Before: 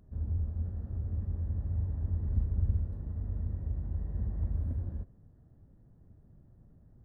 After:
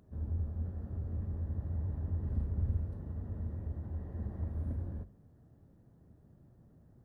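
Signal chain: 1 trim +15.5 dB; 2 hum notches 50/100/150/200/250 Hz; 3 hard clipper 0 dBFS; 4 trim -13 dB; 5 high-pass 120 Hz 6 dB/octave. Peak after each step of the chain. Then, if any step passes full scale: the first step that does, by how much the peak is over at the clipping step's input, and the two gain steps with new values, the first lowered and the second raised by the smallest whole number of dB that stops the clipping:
-1.5 dBFS, -3.0 dBFS, -3.0 dBFS, -16.0 dBFS, -22.0 dBFS; nothing clips

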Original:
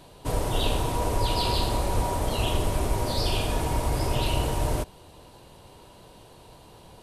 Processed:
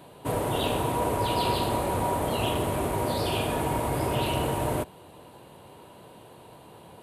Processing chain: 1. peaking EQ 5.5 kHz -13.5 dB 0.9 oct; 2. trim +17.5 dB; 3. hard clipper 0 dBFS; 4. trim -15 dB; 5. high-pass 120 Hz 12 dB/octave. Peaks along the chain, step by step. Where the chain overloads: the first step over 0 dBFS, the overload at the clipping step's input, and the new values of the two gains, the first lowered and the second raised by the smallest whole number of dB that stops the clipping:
-12.5 dBFS, +5.0 dBFS, 0.0 dBFS, -15.0 dBFS, -14.0 dBFS; step 2, 5.0 dB; step 2 +12.5 dB, step 4 -10 dB

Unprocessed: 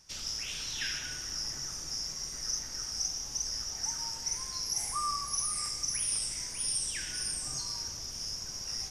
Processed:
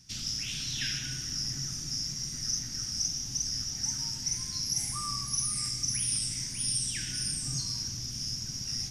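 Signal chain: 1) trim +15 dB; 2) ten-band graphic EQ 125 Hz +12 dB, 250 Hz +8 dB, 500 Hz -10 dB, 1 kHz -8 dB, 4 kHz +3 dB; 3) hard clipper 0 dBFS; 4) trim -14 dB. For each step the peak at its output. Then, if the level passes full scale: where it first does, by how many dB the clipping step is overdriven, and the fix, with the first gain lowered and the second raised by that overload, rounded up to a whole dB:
-3.5 dBFS, -2.5 dBFS, -2.5 dBFS, -16.5 dBFS; nothing clips

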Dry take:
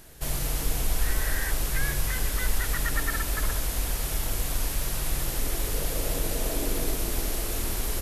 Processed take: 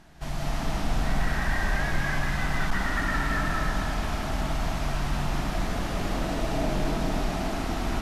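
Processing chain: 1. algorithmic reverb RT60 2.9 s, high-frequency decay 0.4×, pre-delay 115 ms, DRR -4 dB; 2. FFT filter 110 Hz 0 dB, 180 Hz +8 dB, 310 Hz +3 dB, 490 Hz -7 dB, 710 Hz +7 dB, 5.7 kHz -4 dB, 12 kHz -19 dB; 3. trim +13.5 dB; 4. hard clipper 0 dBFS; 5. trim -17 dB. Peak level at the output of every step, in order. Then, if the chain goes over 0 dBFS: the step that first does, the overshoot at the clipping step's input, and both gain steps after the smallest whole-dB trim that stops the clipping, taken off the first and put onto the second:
-8.0 dBFS, -8.5 dBFS, +5.0 dBFS, 0.0 dBFS, -17.0 dBFS; step 3, 5.0 dB; step 3 +8.5 dB, step 5 -12 dB

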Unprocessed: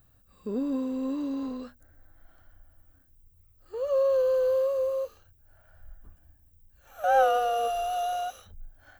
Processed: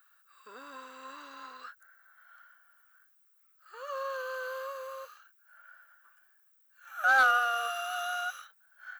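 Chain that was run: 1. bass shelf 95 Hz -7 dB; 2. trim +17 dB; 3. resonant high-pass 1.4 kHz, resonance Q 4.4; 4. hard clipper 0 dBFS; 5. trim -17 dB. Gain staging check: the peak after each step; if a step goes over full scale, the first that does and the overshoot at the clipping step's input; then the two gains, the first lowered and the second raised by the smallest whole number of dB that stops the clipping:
-12.5 dBFS, +4.5 dBFS, +5.0 dBFS, 0.0 dBFS, -17.0 dBFS; step 2, 5.0 dB; step 2 +12 dB, step 5 -12 dB

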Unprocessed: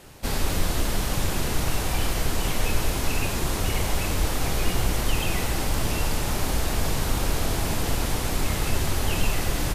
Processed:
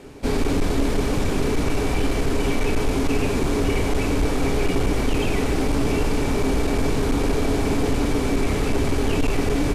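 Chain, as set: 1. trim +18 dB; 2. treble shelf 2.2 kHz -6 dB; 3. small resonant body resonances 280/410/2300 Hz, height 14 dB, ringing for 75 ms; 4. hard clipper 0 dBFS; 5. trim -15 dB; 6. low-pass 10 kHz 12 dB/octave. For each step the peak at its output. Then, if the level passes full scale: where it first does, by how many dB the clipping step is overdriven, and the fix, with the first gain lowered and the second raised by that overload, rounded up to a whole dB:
+8.5 dBFS, +8.0 dBFS, +9.5 dBFS, 0.0 dBFS, -15.0 dBFS, -14.5 dBFS; step 1, 9.5 dB; step 1 +8 dB, step 5 -5 dB

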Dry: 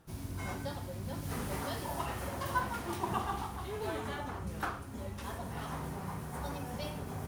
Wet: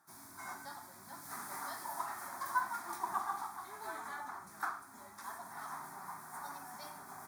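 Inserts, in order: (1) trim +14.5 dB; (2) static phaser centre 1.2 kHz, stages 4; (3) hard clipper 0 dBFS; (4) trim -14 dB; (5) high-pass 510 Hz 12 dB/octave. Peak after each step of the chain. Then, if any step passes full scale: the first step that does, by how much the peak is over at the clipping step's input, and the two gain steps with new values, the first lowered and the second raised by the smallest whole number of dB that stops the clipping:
-4.0 dBFS, -5.0 dBFS, -5.0 dBFS, -19.0 dBFS, -20.5 dBFS; nothing clips

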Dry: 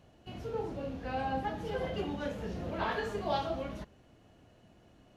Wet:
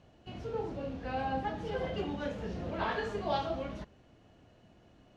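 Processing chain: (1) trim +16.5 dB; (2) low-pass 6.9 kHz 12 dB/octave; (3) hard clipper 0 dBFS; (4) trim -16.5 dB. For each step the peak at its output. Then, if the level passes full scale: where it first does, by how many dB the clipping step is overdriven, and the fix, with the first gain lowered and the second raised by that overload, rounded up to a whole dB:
-2.5 dBFS, -2.5 dBFS, -2.5 dBFS, -19.0 dBFS; nothing clips

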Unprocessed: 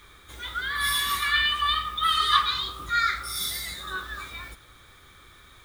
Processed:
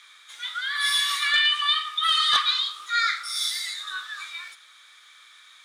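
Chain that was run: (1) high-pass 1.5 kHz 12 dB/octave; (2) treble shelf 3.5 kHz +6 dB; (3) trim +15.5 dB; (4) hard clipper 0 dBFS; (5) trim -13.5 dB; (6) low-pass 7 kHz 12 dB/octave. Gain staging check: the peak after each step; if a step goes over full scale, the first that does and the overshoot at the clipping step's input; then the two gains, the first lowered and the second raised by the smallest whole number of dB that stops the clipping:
-8.5 dBFS, -6.5 dBFS, +9.0 dBFS, 0.0 dBFS, -13.5 dBFS, -12.5 dBFS; step 3, 9.0 dB; step 3 +6.5 dB, step 5 -4.5 dB

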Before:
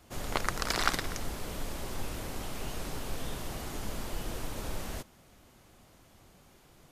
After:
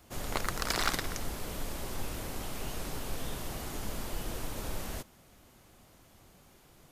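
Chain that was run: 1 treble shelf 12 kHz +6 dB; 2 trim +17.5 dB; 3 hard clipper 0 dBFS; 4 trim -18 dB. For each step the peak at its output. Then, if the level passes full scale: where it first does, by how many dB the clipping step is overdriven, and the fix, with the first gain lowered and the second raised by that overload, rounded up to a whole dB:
-9.0 dBFS, +8.5 dBFS, 0.0 dBFS, -18.0 dBFS; step 2, 8.5 dB; step 2 +8.5 dB, step 4 -9 dB

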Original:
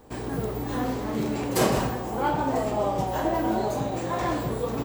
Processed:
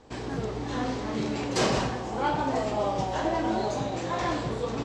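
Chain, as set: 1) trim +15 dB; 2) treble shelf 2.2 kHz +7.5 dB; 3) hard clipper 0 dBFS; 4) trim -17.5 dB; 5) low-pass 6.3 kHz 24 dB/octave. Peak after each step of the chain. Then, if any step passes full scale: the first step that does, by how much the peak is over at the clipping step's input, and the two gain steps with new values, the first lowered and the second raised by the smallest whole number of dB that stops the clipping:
+6.5 dBFS, +9.5 dBFS, 0.0 dBFS, -17.5 dBFS, -16.5 dBFS; step 1, 9.5 dB; step 1 +5 dB, step 4 -7.5 dB

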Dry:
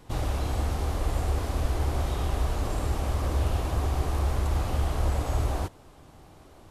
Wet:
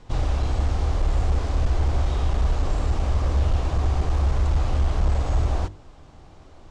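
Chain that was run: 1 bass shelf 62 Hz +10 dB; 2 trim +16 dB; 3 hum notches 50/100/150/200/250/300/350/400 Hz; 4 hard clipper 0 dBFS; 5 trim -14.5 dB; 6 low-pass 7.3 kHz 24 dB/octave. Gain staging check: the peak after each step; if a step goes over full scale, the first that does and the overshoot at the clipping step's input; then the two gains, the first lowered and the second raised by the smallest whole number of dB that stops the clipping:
-8.5 dBFS, +7.5 dBFS, +7.0 dBFS, 0.0 dBFS, -14.5 dBFS, -14.5 dBFS; step 2, 7.0 dB; step 2 +9 dB, step 5 -7.5 dB

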